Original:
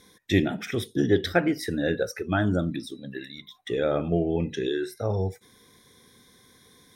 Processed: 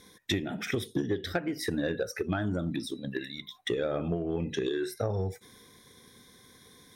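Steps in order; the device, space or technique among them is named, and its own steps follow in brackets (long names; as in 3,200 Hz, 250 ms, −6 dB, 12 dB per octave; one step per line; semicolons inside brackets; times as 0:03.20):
drum-bus smash (transient designer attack +6 dB, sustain +2 dB; downward compressor 12 to 1, threshold −25 dBFS, peak gain reduction 15.5 dB; soft clipping −17.5 dBFS, distortion −22 dB)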